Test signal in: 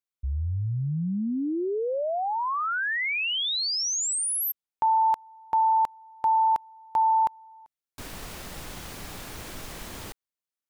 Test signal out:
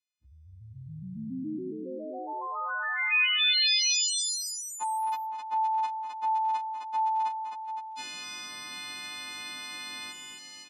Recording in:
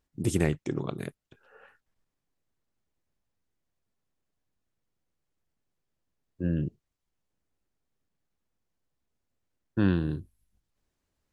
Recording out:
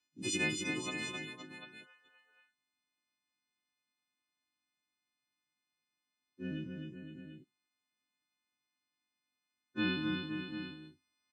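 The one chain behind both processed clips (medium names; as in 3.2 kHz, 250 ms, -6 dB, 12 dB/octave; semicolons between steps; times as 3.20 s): partials quantised in pitch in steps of 3 st; cabinet simulation 210–7200 Hz, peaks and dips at 300 Hz +4 dB, 450 Hz -9 dB, 680 Hz -7 dB, 2.5 kHz +9 dB, 3.8 kHz +9 dB; multi-tap echo 217/261/516/742 ms -14.5/-4.5/-9/-11 dB; trim -7.5 dB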